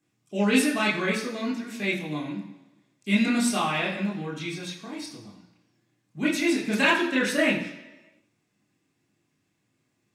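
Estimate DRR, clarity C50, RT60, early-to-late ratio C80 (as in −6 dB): −5.5 dB, 6.5 dB, 1.1 s, 9.0 dB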